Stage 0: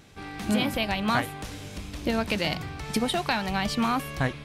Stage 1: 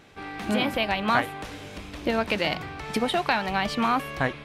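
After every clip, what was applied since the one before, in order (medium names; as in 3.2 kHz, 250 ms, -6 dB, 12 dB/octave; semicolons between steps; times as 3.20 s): tone controls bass -8 dB, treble -9 dB; trim +3.5 dB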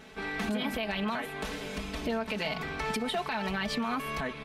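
comb 4.6 ms, depth 94%; compression 3:1, threshold -27 dBFS, peak gain reduction 9.5 dB; peak limiter -22.5 dBFS, peak gain reduction 8.5 dB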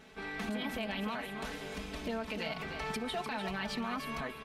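delay 300 ms -8 dB; trim -5.5 dB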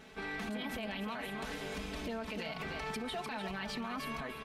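peak limiter -32.5 dBFS, peak gain reduction 6.5 dB; trim +1.5 dB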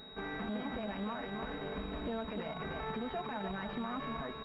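class-D stage that switches slowly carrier 3.8 kHz; trim +1.5 dB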